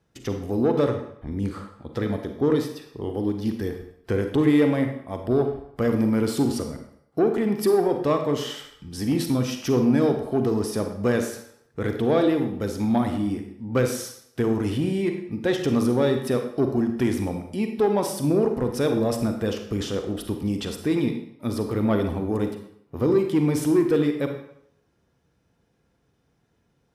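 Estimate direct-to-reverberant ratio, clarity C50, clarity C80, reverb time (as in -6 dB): 5.0 dB, 6.5 dB, 9.5 dB, 0.70 s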